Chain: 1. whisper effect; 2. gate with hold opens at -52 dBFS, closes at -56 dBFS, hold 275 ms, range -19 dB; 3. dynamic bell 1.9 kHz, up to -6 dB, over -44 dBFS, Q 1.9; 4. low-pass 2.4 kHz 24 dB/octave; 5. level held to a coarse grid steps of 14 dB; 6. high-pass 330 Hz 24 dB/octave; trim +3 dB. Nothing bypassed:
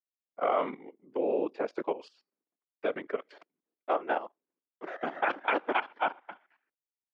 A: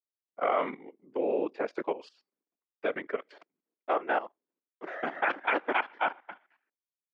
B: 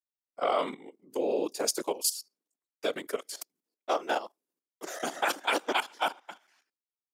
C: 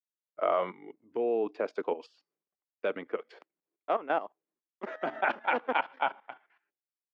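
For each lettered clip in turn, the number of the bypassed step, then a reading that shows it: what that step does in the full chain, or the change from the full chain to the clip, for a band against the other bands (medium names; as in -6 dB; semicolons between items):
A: 3, 2 kHz band +2.5 dB; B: 4, 4 kHz band +12.0 dB; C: 1, 250 Hz band -2.0 dB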